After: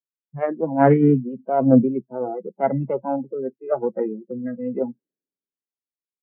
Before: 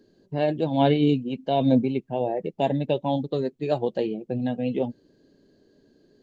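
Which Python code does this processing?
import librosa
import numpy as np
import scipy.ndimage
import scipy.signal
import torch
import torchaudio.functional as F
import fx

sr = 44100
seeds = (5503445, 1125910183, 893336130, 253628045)

y = fx.tracing_dist(x, sr, depth_ms=0.15)
y = fx.noise_reduce_blind(y, sr, reduce_db=29)
y = scipy.signal.sosfilt(scipy.signal.cheby1(5, 1.0, [130.0, 2000.0], 'bandpass', fs=sr, output='sos'), y)
y = fx.band_widen(y, sr, depth_pct=70)
y = F.gain(torch.from_numpy(y), 3.5).numpy()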